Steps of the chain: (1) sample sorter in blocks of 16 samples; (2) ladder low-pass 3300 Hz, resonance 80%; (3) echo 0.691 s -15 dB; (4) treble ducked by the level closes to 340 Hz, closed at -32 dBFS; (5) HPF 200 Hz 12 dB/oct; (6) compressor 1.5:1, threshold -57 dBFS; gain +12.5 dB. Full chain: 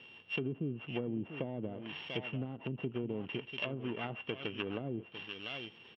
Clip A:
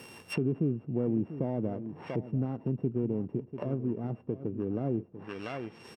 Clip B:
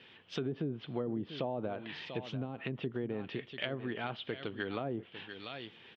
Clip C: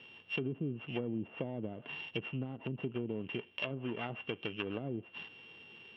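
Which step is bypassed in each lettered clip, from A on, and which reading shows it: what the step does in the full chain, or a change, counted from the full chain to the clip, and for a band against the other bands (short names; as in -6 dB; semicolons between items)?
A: 2, 2 kHz band -12.5 dB; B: 1, distortion -6 dB; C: 3, momentary loudness spread change +3 LU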